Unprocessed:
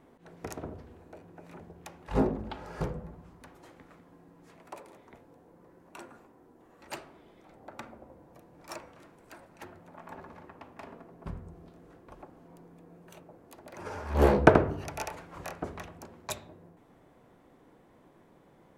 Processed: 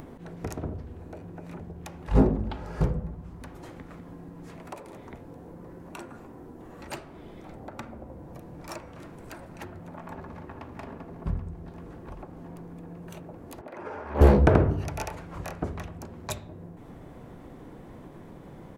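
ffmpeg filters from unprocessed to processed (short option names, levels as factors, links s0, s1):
-filter_complex "[0:a]asplit=2[s0][s1];[s1]afade=t=in:st=10.11:d=0.01,afade=t=out:st=10.74:d=0.01,aecho=0:1:390|780|1170|1560|1950|2340|2730|3120|3510|3900|4290|4680:0.375837|0.30067|0.240536|0.192429|0.153943|0.123154|0.0985235|0.0788188|0.0630551|0.050444|0.0403552|0.0322842[s2];[s0][s2]amix=inputs=2:normalize=0,asettb=1/sr,asplit=3[s3][s4][s5];[s3]atrim=end=13.614[s6];[s4]atrim=start=13.61:end=14.21,asetpts=PTS-STARTPTS,afade=t=in:d=0.004:c=qsin,afade=t=out:st=0.596:d=0.004:c=qsin,acrossover=split=240 2800:gain=0.126 1 0.158[s7][s8][s9];[s7][s8][s9]amix=inputs=3:normalize=0[s10];[s5]atrim=start=14.206[s11];[s6][s10]acrossfade=d=0.004:c1=hsin:c2=qsin[s12];[s12][s11]acrossfade=d=0.004:c1=qsin:c2=hsin,lowshelf=f=220:g=11.5,acompressor=mode=upward:threshold=0.0158:ratio=2.5,alimiter=level_in=2:limit=0.891:release=50:level=0:latency=1,volume=0.562"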